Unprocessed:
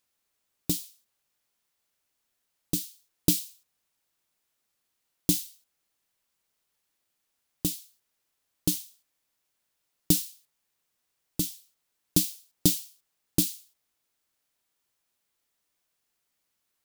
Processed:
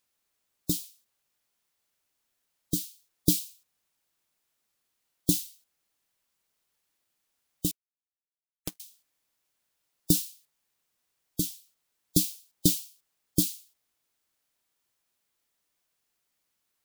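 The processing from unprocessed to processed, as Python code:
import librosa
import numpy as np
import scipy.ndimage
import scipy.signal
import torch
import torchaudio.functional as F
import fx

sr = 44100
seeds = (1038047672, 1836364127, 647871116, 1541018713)

y = fx.power_curve(x, sr, exponent=3.0, at=(7.71, 8.8))
y = fx.spec_gate(y, sr, threshold_db=-25, keep='strong')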